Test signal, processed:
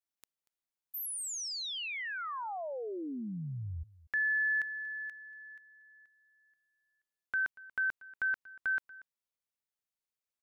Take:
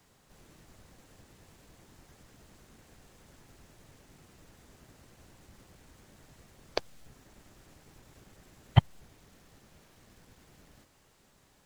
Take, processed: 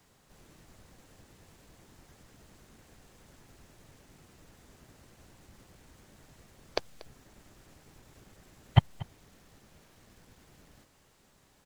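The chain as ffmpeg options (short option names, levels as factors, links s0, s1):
-af "aecho=1:1:236:0.1"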